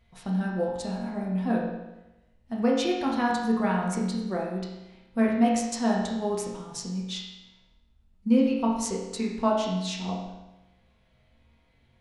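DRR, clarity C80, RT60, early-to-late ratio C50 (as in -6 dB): -4.0 dB, 5.0 dB, 1.0 s, 2.0 dB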